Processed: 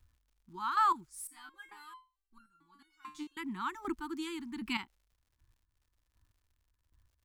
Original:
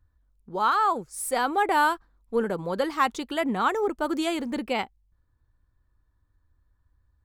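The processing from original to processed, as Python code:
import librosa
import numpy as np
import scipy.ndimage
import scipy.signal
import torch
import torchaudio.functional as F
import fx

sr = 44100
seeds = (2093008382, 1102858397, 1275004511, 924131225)

y = scipy.signal.sosfilt(scipy.signal.ellip(3, 1.0, 40, [340.0, 920.0], 'bandstop', fs=sr, output='sos'), x)
y = fx.chopper(y, sr, hz=1.3, depth_pct=65, duty_pct=20)
y = fx.dmg_crackle(y, sr, seeds[0], per_s=160.0, level_db=-61.0)
y = fx.resonator_held(y, sr, hz=4.5, low_hz=150.0, high_hz=1400.0, at=(1.27, 3.37))
y = y * librosa.db_to_amplitude(-2.0)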